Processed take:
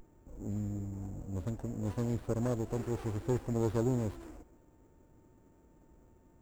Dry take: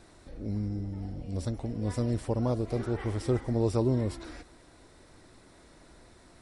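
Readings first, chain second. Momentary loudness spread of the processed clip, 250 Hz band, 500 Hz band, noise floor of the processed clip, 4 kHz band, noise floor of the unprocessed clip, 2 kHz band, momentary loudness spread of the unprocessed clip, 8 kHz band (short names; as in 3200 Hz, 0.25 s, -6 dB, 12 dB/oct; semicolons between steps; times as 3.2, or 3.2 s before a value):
10 LU, -4.0 dB, -4.5 dB, -64 dBFS, -9.5 dB, -57 dBFS, -5.5 dB, 13 LU, -2.5 dB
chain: low-pass opened by the level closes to 400 Hz, open at -23.5 dBFS; whine 7200 Hz -42 dBFS; running maximum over 17 samples; gain -4 dB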